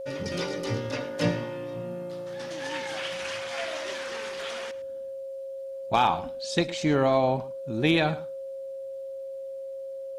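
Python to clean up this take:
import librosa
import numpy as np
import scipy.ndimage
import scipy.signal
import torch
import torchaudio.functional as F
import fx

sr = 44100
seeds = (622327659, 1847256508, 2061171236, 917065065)

y = fx.notch(x, sr, hz=540.0, q=30.0)
y = fx.fix_echo_inverse(y, sr, delay_ms=108, level_db=-17.5)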